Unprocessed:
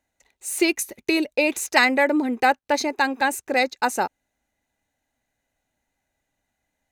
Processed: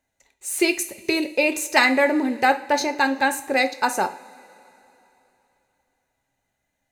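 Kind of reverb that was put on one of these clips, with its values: two-slope reverb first 0.37 s, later 3.3 s, from -21 dB, DRR 6.5 dB

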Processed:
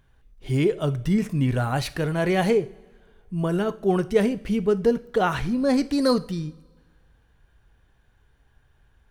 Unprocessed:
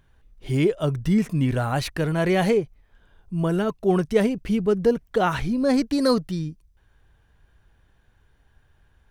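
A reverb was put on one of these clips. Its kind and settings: two-slope reverb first 0.42 s, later 1.8 s, from -18 dB, DRR 12.5 dB; trim -1 dB

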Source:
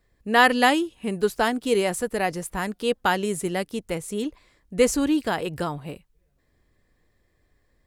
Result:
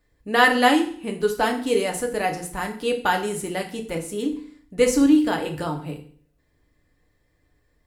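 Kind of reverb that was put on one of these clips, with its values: FDN reverb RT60 0.5 s, low-frequency decay 1.25×, high-frequency decay 0.95×, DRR 2.5 dB; trim -1.5 dB

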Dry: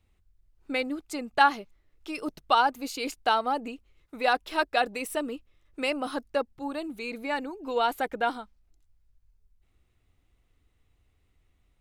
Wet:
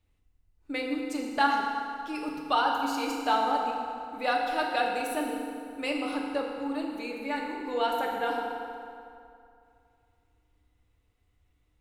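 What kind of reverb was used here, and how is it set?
FDN reverb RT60 2.5 s, low-frequency decay 0.95×, high-frequency decay 0.7×, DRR -1 dB; trim -5 dB

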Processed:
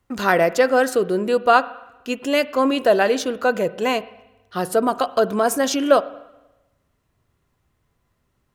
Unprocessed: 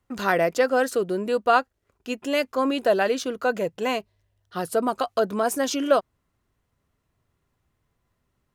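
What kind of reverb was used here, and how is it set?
spring tank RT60 1 s, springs 38/49 ms, chirp 80 ms, DRR 16 dB; trim +4.5 dB

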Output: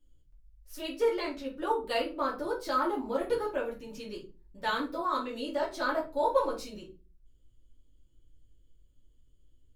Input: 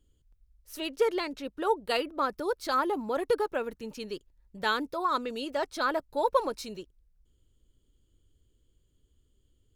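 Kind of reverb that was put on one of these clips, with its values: simulated room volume 150 m³, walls furnished, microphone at 2.6 m; trim -8 dB

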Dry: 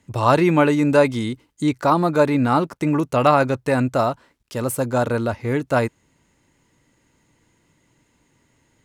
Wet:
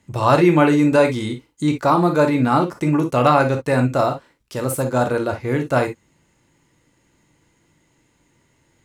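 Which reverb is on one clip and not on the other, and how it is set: gated-style reverb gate 80 ms flat, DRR 5 dB

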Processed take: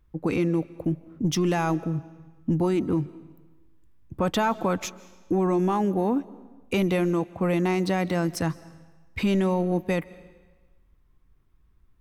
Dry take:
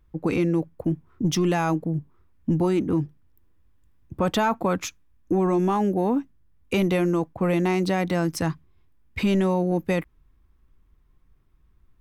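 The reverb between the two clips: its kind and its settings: algorithmic reverb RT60 1.3 s, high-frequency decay 0.95×, pre-delay 110 ms, DRR 19.5 dB; trim -1.5 dB

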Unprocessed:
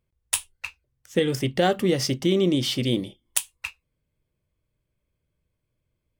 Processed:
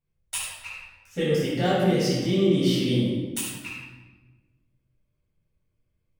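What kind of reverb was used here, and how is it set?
simulated room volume 830 m³, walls mixed, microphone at 7.5 m; trim -14.5 dB

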